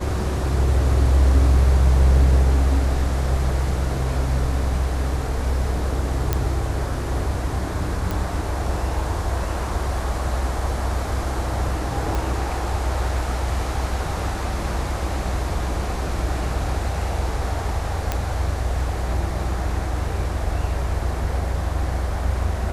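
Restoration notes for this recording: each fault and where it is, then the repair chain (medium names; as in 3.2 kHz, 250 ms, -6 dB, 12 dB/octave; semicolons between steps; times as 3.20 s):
6.33 s: pop -6 dBFS
8.11 s: pop
12.15 s: pop
18.12 s: pop -8 dBFS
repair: de-click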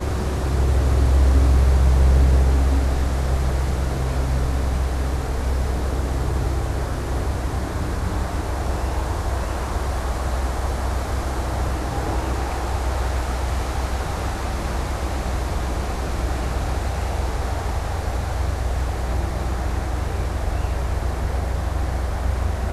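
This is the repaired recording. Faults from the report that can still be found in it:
nothing left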